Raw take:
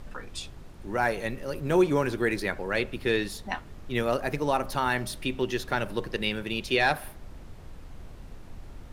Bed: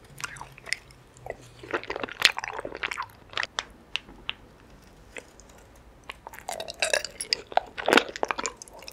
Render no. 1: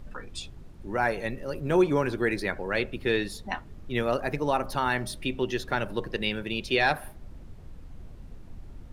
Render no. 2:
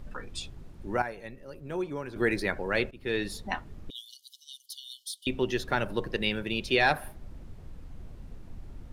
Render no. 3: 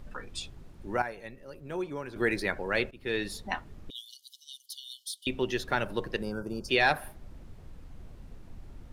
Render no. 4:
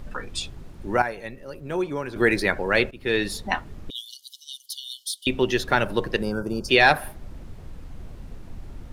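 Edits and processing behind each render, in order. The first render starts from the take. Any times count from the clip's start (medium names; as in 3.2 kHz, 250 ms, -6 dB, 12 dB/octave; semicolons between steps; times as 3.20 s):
noise reduction 7 dB, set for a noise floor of -46 dBFS
1.02–2.16 s: gain -11 dB; 2.91–3.31 s: fade in, from -18.5 dB; 3.90–5.27 s: brick-wall FIR high-pass 2.9 kHz
6.22–6.69 s: time-frequency box 1.6–4.5 kHz -27 dB; bass shelf 420 Hz -3 dB
trim +8 dB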